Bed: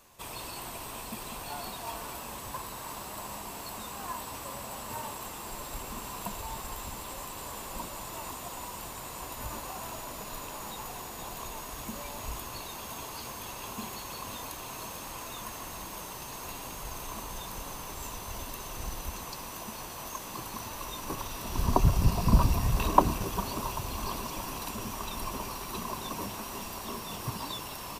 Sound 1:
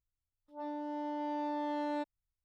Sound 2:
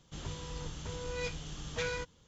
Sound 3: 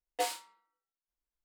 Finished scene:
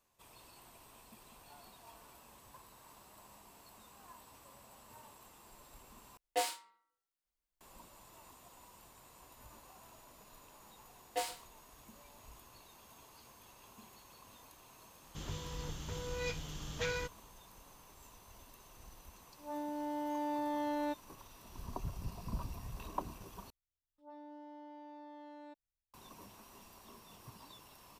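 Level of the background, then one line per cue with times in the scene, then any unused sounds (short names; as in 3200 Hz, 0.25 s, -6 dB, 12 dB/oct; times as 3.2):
bed -18.5 dB
6.17 replace with 3 -0.5 dB + soft clip -20 dBFS
10.97 add 3 -4.5 dB + echo 0.129 s -19 dB
15.03 add 2 -1.5 dB
18.9 add 1 -0.5 dB
23.5 replace with 1 -7.5 dB + limiter -36.5 dBFS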